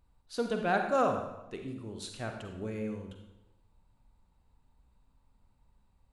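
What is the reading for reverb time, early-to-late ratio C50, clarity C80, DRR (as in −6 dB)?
0.95 s, 5.5 dB, 8.0 dB, 4.0 dB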